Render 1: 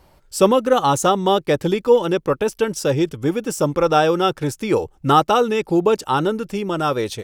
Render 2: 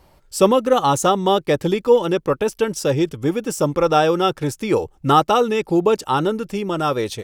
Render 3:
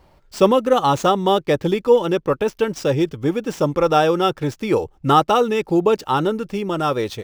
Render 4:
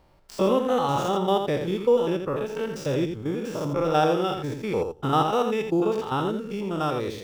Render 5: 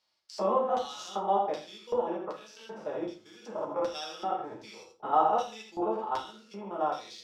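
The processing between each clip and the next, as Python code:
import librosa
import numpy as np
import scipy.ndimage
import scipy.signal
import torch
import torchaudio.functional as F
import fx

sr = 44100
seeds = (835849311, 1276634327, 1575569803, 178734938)

y1 = fx.notch(x, sr, hz=1500.0, q=23.0)
y2 = scipy.ndimage.median_filter(y1, 5, mode='constant')
y3 = fx.spec_steps(y2, sr, hold_ms=100)
y3 = y3 + 10.0 ** (-7.0 / 20.0) * np.pad(y3, (int(84 * sr / 1000.0), 0))[:len(y3)]
y3 = y3 * librosa.db_to_amplitude(-4.5)
y4 = fx.filter_lfo_bandpass(y3, sr, shape='square', hz=1.3, low_hz=810.0, high_hz=4900.0, q=2.6)
y4 = fx.rev_fdn(y4, sr, rt60_s=0.35, lf_ratio=1.25, hf_ratio=0.7, size_ms=28.0, drr_db=-1.0)
y4 = y4 * librosa.db_to_amplitude(-1.0)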